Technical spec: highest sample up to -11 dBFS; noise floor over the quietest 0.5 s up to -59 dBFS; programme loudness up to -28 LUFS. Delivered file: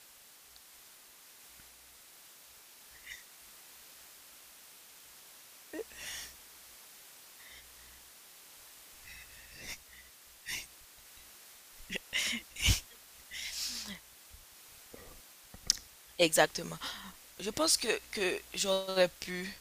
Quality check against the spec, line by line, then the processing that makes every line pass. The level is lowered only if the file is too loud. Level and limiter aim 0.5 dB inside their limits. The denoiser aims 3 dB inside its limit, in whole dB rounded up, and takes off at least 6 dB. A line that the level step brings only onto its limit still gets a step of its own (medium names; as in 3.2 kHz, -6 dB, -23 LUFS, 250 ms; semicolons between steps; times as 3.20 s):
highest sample -7.0 dBFS: fail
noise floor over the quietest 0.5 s -58 dBFS: fail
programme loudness -33.5 LUFS: pass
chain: noise reduction 6 dB, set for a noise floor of -58 dBFS; peak limiter -11.5 dBFS